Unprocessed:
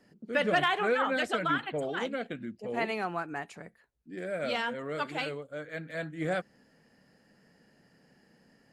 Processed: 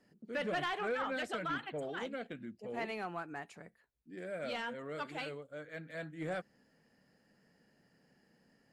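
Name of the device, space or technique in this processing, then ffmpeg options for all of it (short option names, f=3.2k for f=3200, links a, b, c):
saturation between pre-emphasis and de-emphasis: -af "highshelf=f=5.4k:g=11.5,asoftclip=type=tanh:threshold=-22dB,highshelf=f=5.4k:g=-11.5,volume=-6.5dB"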